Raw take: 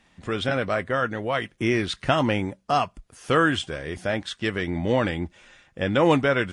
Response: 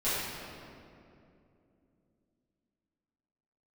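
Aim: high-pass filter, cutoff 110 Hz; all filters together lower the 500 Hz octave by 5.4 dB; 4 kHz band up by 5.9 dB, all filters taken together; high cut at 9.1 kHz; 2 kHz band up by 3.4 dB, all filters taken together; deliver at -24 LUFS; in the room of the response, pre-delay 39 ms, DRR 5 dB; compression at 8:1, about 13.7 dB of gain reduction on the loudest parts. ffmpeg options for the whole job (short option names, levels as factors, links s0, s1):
-filter_complex "[0:a]highpass=110,lowpass=9100,equalizer=f=500:t=o:g=-7,equalizer=f=2000:t=o:g=3.5,equalizer=f=4000:t=o:g=6.5,acompressor=threshold=0.0316:ratio=8,asplit=2[s0][s1];[1:a]atrim=start_sample=2205,adelay=39[s2];[s1][s2]afir=irnorm=-1:irlink=0,volume=0.178[s3];[s0][s3]amix=inputs=2:normalize=0,volume=2.99"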